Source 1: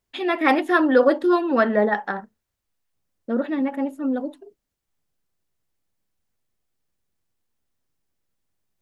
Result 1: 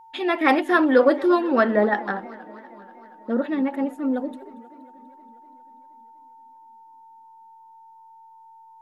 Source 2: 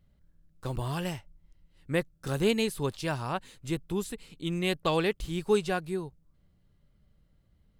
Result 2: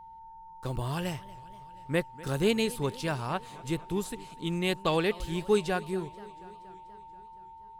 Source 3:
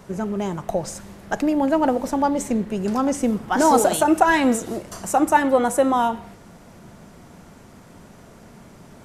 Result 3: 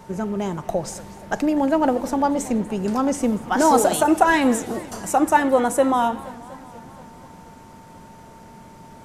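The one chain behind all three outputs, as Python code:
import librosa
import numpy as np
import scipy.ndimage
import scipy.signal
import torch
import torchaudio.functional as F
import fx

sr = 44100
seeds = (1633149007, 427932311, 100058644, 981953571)

y = x + 10.0 ** (-46.0 / 20.0) * np.sin(2.0 * np.pi * 900.0 * np.arange(len(x)) / sr)
y = fx.echo_warbled(y, sr, ms=239, feedback_pct=68, rate_hz=2.8, cents=202, wet_db=-20.0)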